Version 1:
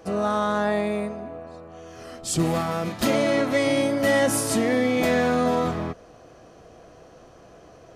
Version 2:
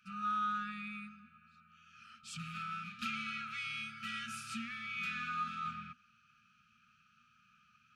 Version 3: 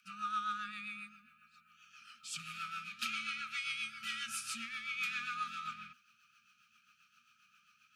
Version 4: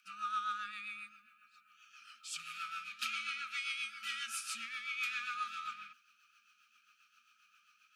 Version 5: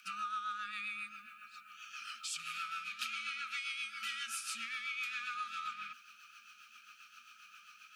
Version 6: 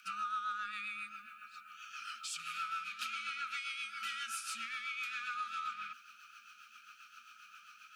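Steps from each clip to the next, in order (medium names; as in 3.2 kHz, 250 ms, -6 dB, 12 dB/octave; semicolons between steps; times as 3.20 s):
vowel filter a; FFT band-reject 240–1200 Hz; trim +6.5 dB
tilt EQ +3.5 dB/octave; rotary cabinet horn 7.5 Hz
high-pass 410 Hz 12 dB/octave
compression 4:1, threshold -51 dBFS, peak gain reduction 15 dB; trim +11 dB
peaking EQ 1.4 kHz +6.5 dB 0.27 oct; saturation -26.5 dBFS, distortion -27 dB; trim -1 dB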